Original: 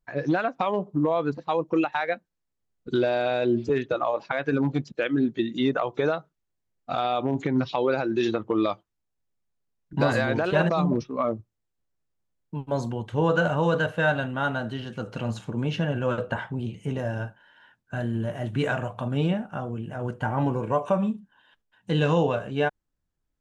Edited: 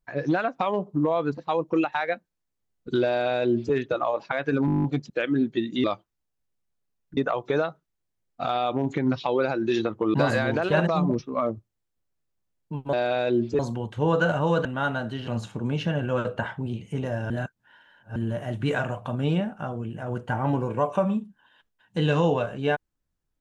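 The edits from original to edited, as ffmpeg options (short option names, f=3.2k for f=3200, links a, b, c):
-filter_complex "[0:a]asplit=19[a][b][c][d][e][f][g][h][i][j][k][l][m][n][o][p][q][r][s];[a]atrim=end=4.682[t];[b]atrim=start=4.658:end=4.682[u];[c]atrim=start=4.658:end=4.682[v];[d]atrim=start=4.658:end=4.682[w];[e]atrim=start=4.658:end=4.682[x];[f]atrim=start=4.658:end=4.682[y];[g]atrim=start=4.658:end=4.682[z];[h]atrim=start=4.658:end=4.682[aa];[i]atrim=start=4.658:end=4.682[ab];[j]atrim=start=4.658:end=5.662[ac];[k]atrim=start=8.628:end=9.962[ad];[l]atrim=start=5.658:end=8.632[ae];[m]atrim=start=9.958:end=12.752[af];[n]atrim=start=3.078:end=3.742[ag];[o]atrim=start=12.748:end=13.812[ah];[p]atrim=start=14.248:end=14.872[ai];[q]atrim=start=15.198:end=17.232[aj];[r]atrim=start=17.228:end=18.092,asetpts=PTS-STARTPTS,areverse[ak];[s]atrim=start=18.088[al];[t][u]acrossfade=d=0.004:c1=hsin:c2=hsin[am];[am][v]acrossfade=d=0.004:c1=hsin:c2=hsin[an];[an][w]acrossfade=d=0.004:c1=hsin:c2=hsin[ao];[ao][x]acrossfade=d=0.004:c1=hsin:c2=hsin[ap];[ap][y]acrossfade=d=0.004:c1=hsin:c2=hsin[aq];[aq][z]acrossfade=d=0.004:c1=hsin:c2=hsin[ar];[ar][aa]acrossfade=d=0.004:c1=hsin:c2=hsin[as];[as][ab]acrossfade=d=0.004:c1=hsin:c2=hsin[at];[at][ac]acrossfade=d=0.004:c1=hsin:c2=hsin[au];[au][ad]acrossfade=d=0.004:c1=hsin:c2=hsin[av];[av][ae]acrossfade=d=0.004:c1=hsin:c2=hsin[aw];[aw][af]acrossfade=d=0.004:c1=hsin:c2=hsin[ax];[ax][ag]acrossfade=d=0.004:c1=hsin:c2=hsin[ay];[ay][ah]acrossfade=d=0.004:c1=hsin:c2=hsin[az];[az][ai]acrossfade=d=0.004:c1=hsin:c2=hsin[ba];[ba][aj]acrossfade=d=0.004:c1=hsin:c2=hsin[bb];[bb][ak]acrossfade=d=0.004:c1=hsin:c2=hsin[bc];[bc][al]acrossfade=d=0.004:c1=hsin:c2=hsin"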